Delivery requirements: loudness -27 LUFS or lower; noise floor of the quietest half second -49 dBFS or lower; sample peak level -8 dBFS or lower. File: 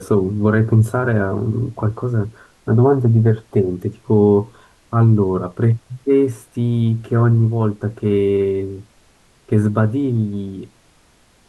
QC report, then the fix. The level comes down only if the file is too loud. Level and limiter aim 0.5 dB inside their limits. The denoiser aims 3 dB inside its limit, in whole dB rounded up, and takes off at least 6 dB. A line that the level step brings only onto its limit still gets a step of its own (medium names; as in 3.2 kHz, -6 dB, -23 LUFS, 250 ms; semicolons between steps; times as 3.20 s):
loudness -17.5 LUFS: fail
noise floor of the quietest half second -54 dBFS: pass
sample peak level -4.0 dBFS: fail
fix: trim -10 dB